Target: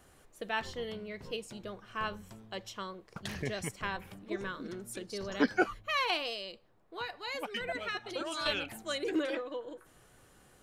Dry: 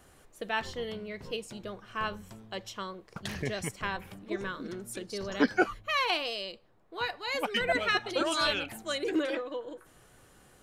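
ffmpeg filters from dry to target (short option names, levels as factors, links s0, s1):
-filter_complex "[0:a]asettb=1/sr,asplit=3[s0][s1][s2];[s0]atrim=end=6.334[s3];[s1]atrim=start=6.33:end=8.46,asetpts=PTS-STARTPTS,afade=t=in:d=0.004:c=qsin,afade=t=out:st=2.126:d=0.004:c=qsin,acompressor=threshold=0.02:ratio=2.5[s4];[s2]atrim=start=8.456[s5];[s3][s4]acrossfade=d=0.004:c1=hsin:c2=qsin[s6];[s6][s5]acrossfade=d=0.004:c1=qsin:c2=hsin,volume=0.75"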